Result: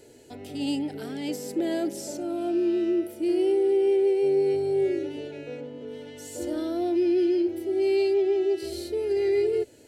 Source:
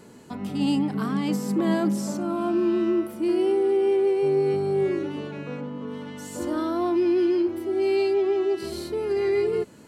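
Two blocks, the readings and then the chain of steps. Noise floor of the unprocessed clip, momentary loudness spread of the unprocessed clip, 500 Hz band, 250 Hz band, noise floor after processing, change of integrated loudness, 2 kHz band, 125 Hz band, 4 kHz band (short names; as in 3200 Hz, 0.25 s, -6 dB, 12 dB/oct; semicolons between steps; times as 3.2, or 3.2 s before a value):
-47 dBFS, 12 LU, -0.5 dB, -3.0 dB, -50 dBFS, -1.0 dB, -4.5 dB, -11.0 dB, -1.0 dB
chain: fixed phaser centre 460 Hz, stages 4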